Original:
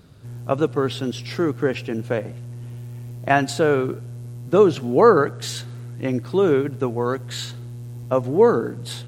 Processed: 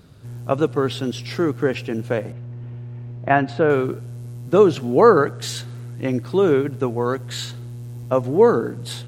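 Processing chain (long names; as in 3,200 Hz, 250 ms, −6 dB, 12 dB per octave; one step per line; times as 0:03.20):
0:02.32–0:03.70: low-pass filter 2,300 Hz 12 dB per octave
level +1 dB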